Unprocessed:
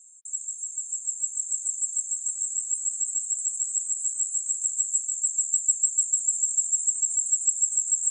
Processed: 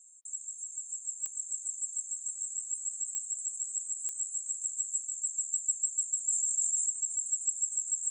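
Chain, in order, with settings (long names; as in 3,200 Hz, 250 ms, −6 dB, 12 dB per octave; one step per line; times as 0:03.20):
dynamic equaliser 7,800 Hz, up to −3 dB, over −33 dBFS, Q 0.92
digital clicks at 0:01.26/0:03.15/0:04.09, −17 dBFS
0:06.28–0:06.89: level that may fall only so fast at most 39 dB per second
level −5 dB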